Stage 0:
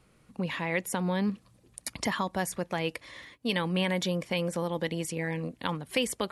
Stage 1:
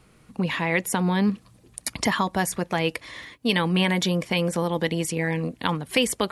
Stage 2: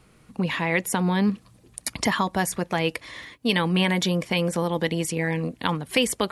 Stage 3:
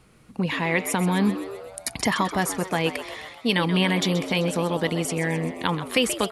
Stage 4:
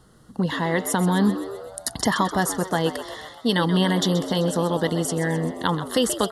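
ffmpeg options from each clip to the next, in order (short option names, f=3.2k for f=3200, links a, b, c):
-af "bandreject=f=550:w=12,volume=7dB"
-af anull
-filter_complex "[0:a]asplit=8[a][b][c][d][e][f][g][h];[b]adelay=129,afreqshift=94,volume=-12dB[i];[c]adelay=258,afreqshift=188,volume=-16.3dB[j];[d]adelay=387,afreqshift=282,volume=-20.6dB[k];[e]adelay=516,afreqshift=376,volume=-24.9dB[l];[f]adelay=645,afreqshift=470,volume=-29.2dB[m];[g]adelay=774,afreqshift=564,volume=-33.5dB[n];[h]adelay=903,afreqshift=658,volume=-37.8dB[o];[a][i][j][k][l][m][n][o]amix=inputs=8:normalize=0"
-af "asuperstop=centerf=2400:order=4:qfactor=2.1,volume=2dB"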